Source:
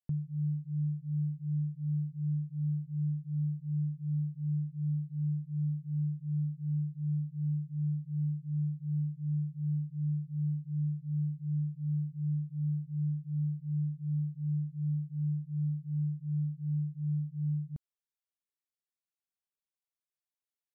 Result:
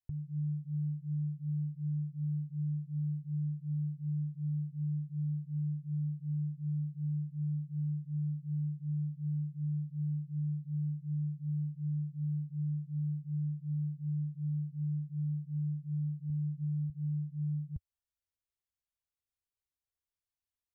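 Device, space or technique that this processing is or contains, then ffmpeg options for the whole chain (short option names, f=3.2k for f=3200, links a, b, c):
car stereo with a boomy subwoofer: -filter_complex "[0:a]asettb=1/sr,asplit=3[a][b][c];[a]atrim=end=16.294[d];[b]atrim=start=16.29:end=16.9,asetpts=PTS-STARTPTS,afade=t=in:d=0.004:c=qsin,afade=t=out:st=0.606:d=0.004:c=qsin,aecho=1:1:6.5:0.62,atrim=end_sample=26901[e];[c]atrim=start=16.896[f];[d][e]acrossfade=d=0.004:c1=hsin:c2=qsin[g];[g][f]acrossfade=d=0.004:c1=qsin:c2=hsin,lowshelf=f=130:t=q:w=1.5:g=14,alimiter=level_in=2dB:limit=-24dB:level=0:latency=1:release=174,volume=-2dB,volume=-4dB"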